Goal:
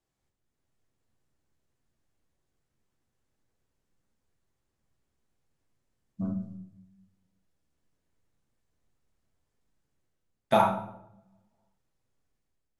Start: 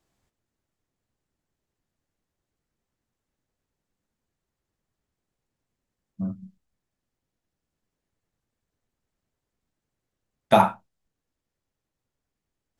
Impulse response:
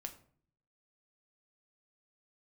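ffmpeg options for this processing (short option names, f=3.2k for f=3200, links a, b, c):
-filter_complex "[0:a]dynaudnorm=f=140:g=7:m=9dB[a];[1:a]atrim=start_sample=2205,asetrate=24696,aresample=44100[b];[a][b]afir=irnorm=-1:irlink=0,volume=-8dB"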